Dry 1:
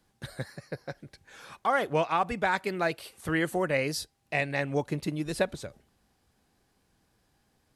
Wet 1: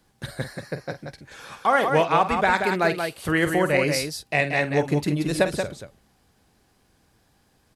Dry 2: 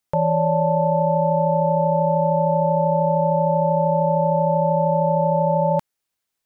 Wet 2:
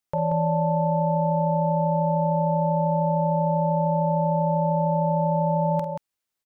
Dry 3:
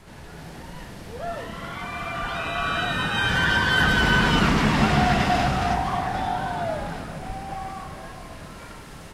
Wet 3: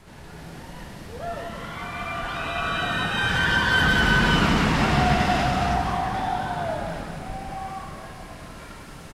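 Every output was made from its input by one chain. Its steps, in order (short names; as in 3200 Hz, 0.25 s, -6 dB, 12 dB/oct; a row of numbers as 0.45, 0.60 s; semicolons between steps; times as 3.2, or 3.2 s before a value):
tapped delay 48/181 ms -11.5/-6 dB; match loudness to -23 LUFS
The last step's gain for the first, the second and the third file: +6.0, -5.0, -1.5 dB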